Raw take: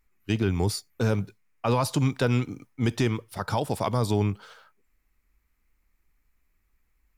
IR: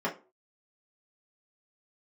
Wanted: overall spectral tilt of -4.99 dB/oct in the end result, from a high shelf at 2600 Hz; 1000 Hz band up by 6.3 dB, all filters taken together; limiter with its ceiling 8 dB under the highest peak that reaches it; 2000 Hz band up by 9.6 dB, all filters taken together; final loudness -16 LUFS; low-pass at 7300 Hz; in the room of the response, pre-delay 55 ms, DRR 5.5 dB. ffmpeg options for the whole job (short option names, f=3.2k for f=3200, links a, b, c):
-filter_complex "[0:a]lowpass=7.3k,equalizer=f=1k:t=o:g=4.5,equalizer=f=2k:t=o:g=7.5,highshelf=f=2.6k:g=8.5,alimiter=limit=-13.5dB:level=0:latency=1,asplit=2[a][b];[1:a]atrim=start_sample=2205,adelay=55[c];[b][c]afir=irnorm=-1:irlink=0,volume=-14.5dB[d];[a][d]amix=inputs=2:normalize=0,volume=10dB"